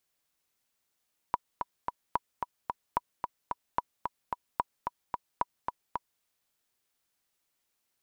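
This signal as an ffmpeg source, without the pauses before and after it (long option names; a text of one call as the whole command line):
ffmpeg -f lavfi -i "aevalsrc='pow(10,(-13-5*gte(mod(t,3*60/221),60/221))/20)*sin(2*PI*974*mod(t,60/221))*exp(-6.91*mod(t,60/221)/0.03)':duration=4.88:sample_rate=44100" out.wav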